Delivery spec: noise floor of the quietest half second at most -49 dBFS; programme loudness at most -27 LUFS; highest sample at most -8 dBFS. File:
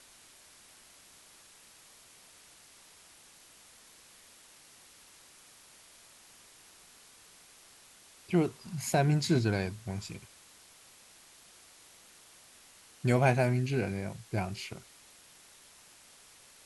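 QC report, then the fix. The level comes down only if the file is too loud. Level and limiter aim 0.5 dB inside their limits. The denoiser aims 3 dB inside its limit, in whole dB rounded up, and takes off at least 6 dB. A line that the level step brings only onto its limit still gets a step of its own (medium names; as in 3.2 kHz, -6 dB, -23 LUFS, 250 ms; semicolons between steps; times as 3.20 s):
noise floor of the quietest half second -57 dBFS: pass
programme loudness -31.0 LUFS: pass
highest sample -11.5 dBFS: pass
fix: none needed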